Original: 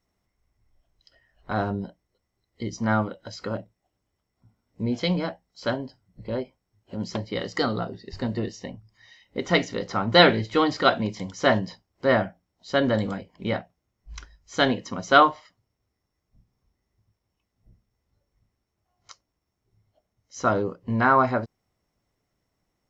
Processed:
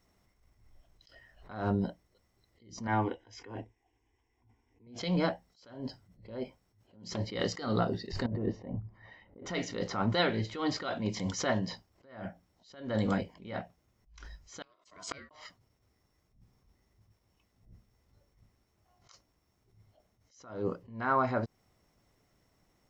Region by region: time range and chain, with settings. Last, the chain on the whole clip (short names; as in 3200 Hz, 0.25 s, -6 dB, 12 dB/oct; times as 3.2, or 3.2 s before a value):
2.87–4.87 synth low-pass 5200 Hz, resonance Q 1.5 + fixed phaser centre 880 Hz, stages 8
8.26–9.46 LPF 1000 Hz + negative-ratio compressor -35 dBFS
14.62–15.31 high shelf 4800 Hz +11.5 dB + flipped gate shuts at -17 dBFS, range -39 dB + ring modulator 840 Hz
whole clip: compressor 12:1, threshold -29 dBFS; attack slew limiter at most 110 dB/s; gain +6 dB